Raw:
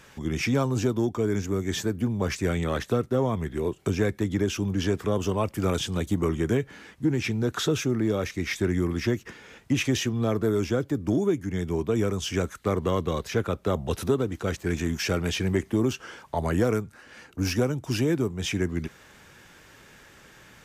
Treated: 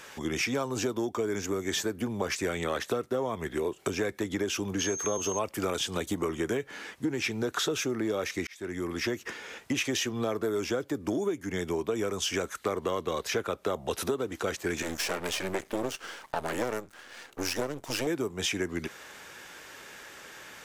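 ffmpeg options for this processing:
ffmpeg -i in.wav -filter_complex "[0:a]asettb=1/sr,asplit=3[link_01][link_02][link_03];[link_01]atrim=end=4.794[link_04];[link_02]atrim=start=4.79:end=5.39,asetpts=PTS-STARTPTS,afade=type=in:duration=0.004:curve=qsin,afade=type=out:start_time=0.596:duration=0.004:curve=qsin,aeval=exprs='val(0)+0.02*sin(2*PI*6400*n/s)':channel_layout=same[link_05];[link_03]atrim=start=5.386[link_06];[link_04][link_05]acrossfade=duration=0.004:curve1=hsin:curve2=qsin[link_07];[link_07][link_06]acrossfade=duration=0.004:curve1=qsin:curve2=hsin,asettb=1/sr,asplit=3[link_08][link_09][link_10];[link_08]atrim=end=14.824[link_11];[link_09]atrim=start=14.82:end=18.07,asetpts=PTS-STARTPTS,afade=type=in:duration=0.004:curve=qsin,afade=type=out:start_time=3.246:duration=0.004:curve=qsin,aeval=exprs='max(val(0),0)':channel_layout=same[link_12];[link_10]atrim=start=18.066[link_13];[link_11][link_12]acrossfade=duration=0.004:curve1=hsin:curve2=qsin[link_14];[link_14][link_13]acrossfade=duration=0.004:curve1=qsin:curve2=hsin,asplit=2[link_15][link_16];[link_15]atrim=end=8.47,asetpts=PTS-STARTPTS,afade=type=out:start_time=8.466:duration=0.004:curve=hsin[link_17];[link_16]atrim=start=8.47,asetpts=PTS-STARTPTS,afade=type=in:duration=0.78[link_18];[link_17][link_18]concat=n=2:v=0:a=1,bass=frequency=250:gain=-14,treble=frequency=4000:gain=1,acompressor=threshold=-33dB:ratio=4,volume=5.5dB" out.wav

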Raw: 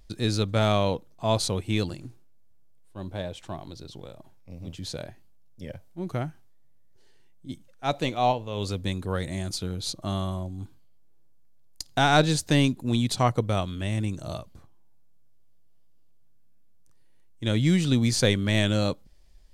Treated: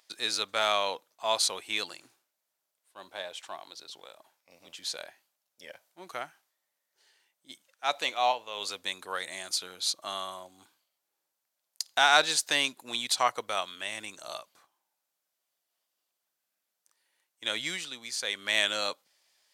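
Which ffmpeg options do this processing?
ffmpeg -i in.wav -filter_complex "[0:a]asplit=3[link_01][link_02][link_03];[link_01]atrim=end=17.9,asetpts=PTS-STARTPTS,afade=type=out:start_time=17.62:duration=0.28:silence=0.334965[link_04];[link_02]atrim=start=17.9:end=18.25,asetpts=PTS-STARTPTS,volume=-9.5dB[link_05];[link_03]atrim=start=18.25,asetpts=PTS-STARTPTS,afade=type=in:duration=0.28:silence=0.334965[link_06];[link_04][link_05][link_06]concat=n=3:v=0:a=1,highpass=970,volume=3dB" out.wav

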